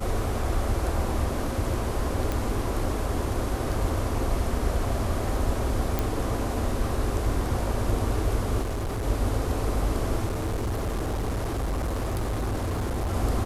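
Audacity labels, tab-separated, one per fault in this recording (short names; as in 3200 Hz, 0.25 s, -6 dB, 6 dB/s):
2.320000	2.320000	pop
5.990000	5.990000	pop
8.620000	9.050000	clipped -26 dBFS
10.250000	13.140000	clipped -24.5 dBFS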